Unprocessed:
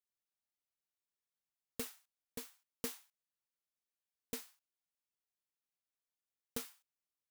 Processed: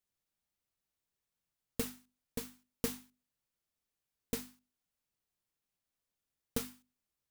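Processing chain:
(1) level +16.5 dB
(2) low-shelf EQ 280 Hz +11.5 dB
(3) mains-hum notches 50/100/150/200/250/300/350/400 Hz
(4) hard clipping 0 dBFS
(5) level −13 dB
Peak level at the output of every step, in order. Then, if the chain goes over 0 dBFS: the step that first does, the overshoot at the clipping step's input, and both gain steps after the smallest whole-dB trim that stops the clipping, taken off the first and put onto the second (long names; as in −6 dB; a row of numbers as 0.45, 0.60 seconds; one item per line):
−7.5, −3.5, −4.5, −4.5, −17.5 dBFS
no step passes full scale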